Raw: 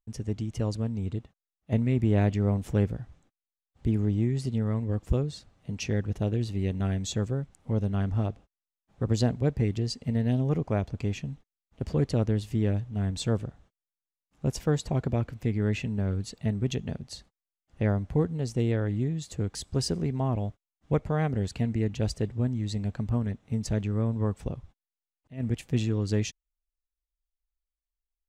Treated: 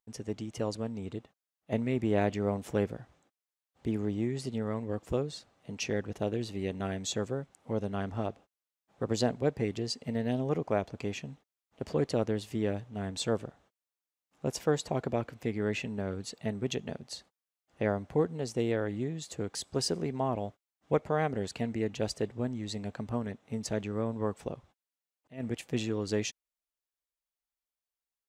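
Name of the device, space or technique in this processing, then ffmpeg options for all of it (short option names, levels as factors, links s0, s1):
filter by subtraction: -filter_complex "[0:a]asplit=2[s0][s1];[s1]lowpass=560,volume=-1[s2];[s0][s2]amix=inputs=2:normalize=0"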